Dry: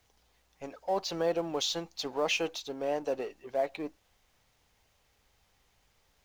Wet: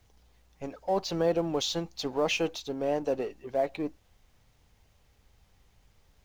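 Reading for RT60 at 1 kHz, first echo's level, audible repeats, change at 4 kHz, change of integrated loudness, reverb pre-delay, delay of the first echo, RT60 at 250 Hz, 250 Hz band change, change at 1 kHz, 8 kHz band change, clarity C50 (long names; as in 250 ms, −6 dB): no reverb audible, no echo audible, no echo audible, 0.0 dB, +2.5 dB, no reverb audible, no echo audible, no reverb audible, +5.5 dB, +1.5 dB, 0.0 dB, no reverb audible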